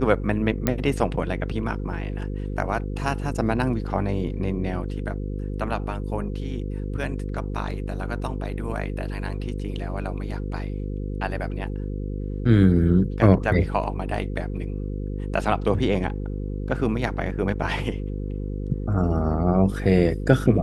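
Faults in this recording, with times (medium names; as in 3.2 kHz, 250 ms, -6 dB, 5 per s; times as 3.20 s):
buzz 50 Hz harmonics 10 -29 dBFS
0.67 s: pop -7 dBFS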